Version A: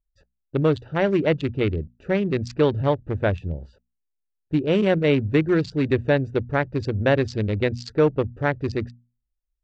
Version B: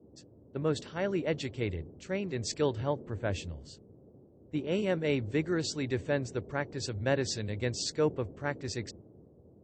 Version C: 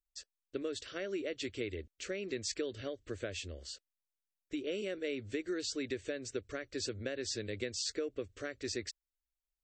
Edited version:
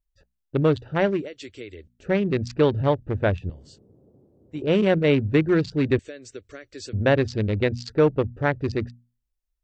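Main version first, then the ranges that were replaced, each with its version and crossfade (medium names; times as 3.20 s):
A
1.17–1.95 s: from C, crossfade 0.24 s
3.50–4.62 s: from B
5.99–6.93 s: from C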